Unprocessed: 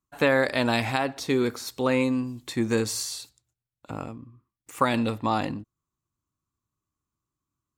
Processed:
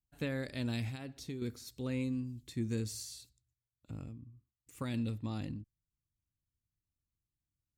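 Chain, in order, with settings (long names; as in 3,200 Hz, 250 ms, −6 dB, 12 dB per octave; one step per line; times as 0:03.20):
guitar amp tone stack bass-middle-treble 10-0-1
0:00.88–0:01.42: downward compressor, threshold −46 dBFS, peak gain reduction 7 dB
level +7.5 dB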